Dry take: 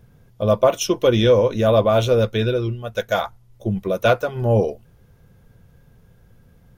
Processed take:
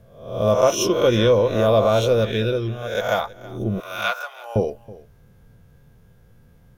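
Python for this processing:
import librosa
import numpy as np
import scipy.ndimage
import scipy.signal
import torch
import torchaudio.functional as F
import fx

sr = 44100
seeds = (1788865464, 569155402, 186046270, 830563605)

y = fx.spec_swells(x, sr, rise_s=0.62)
y = fx.highpass(y, sr, hz=890.0, slope=24, at=(3.8, 4.56))
y = y + 10.0 ** (-20.0 / 20.0) * np.pad(y, (int(324 * sr / 1000.0), 0))[:len(y)]
y = y * 10.0 ** (-2.5 / 20.0)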